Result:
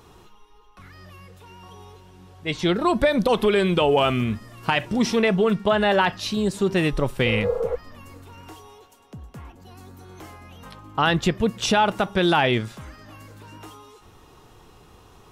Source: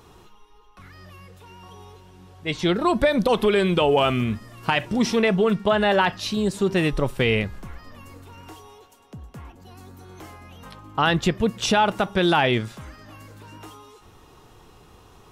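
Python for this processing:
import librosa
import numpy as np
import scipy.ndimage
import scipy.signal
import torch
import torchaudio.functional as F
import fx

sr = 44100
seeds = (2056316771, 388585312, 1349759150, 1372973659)

y = fx.spec_repair(x, sr, seeds[0], start_s=7.29, length_s=0.44, low_hz=390.0, high_hz=1400.0, source='before')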